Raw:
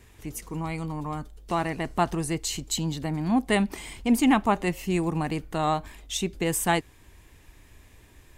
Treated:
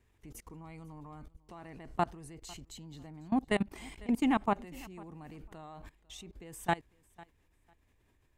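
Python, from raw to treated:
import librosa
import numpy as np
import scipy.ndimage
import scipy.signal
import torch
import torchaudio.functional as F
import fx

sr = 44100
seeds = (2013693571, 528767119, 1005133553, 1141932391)

p1 = fx.high_shelf(x, sr, hz=3000.0, db=-6.5)
p2 = fx.level_steps(p1, sr, step_db=22)
p3 = p2 + fx.echo_feedback(p2, sr, ms=499, feedback_pct=18, wet_db=-22.5, dry=0)
y = F.gain(torch.from_numpy(p3), -4.0).numpy()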